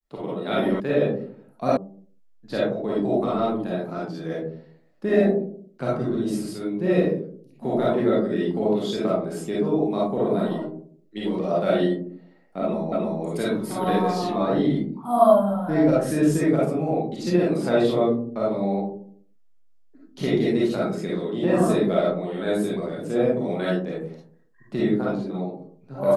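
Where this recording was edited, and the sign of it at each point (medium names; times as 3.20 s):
0.80 s: sound stops dead
1.77 s: sound stops dead
12.92 s: repeat of the last 0.31 s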